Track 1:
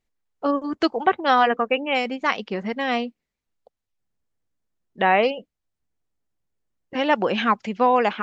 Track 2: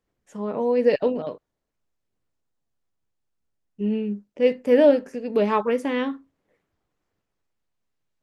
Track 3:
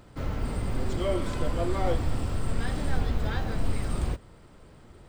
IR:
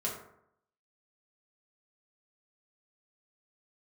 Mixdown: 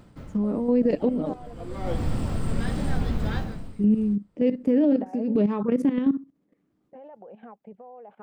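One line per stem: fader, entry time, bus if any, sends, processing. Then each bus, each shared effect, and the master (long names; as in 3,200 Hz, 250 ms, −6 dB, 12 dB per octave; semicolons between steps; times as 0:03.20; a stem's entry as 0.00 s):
−18.0 dB, 0.00 s, bus A, no send, low-pass filter 1,500 Hz 12 dB per octave; flat-topped bell 600 Hz +13.5 dB 1.3 octaves; downward compressor 4 to 1, threshold −15 dBFS, peak gain reduction 11.5 dB
−1.0 dB, 0.00 s, bus A, no send, high-pass filter 59 Hz; parametric band 250 Hz +10 dB 2 octaves; hollow resonant body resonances 300/1,200 Hz, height 8 dB, ringing for 70 ms
0.0 dB, 0.00 s, no bus, no send, automatic ducking −20 dB, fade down 0.40 s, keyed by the second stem
bus A: 0.0 dB, output level in coarse steps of 15 dB; brickwall limiter −13.5 dBFS, peak gain reduction 6 dB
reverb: not used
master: parametric band 190 Hz +8 dB 1.1 octaves; brickwall limiter −13.5 dBFS, peak gain reduction 7 dB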